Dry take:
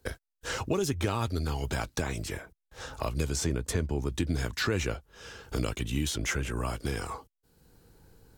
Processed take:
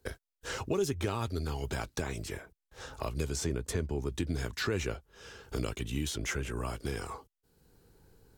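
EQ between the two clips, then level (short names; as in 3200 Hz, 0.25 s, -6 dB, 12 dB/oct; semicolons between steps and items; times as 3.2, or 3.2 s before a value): bell 400 Hz +5 dB 0.21 oct; -4.0 dB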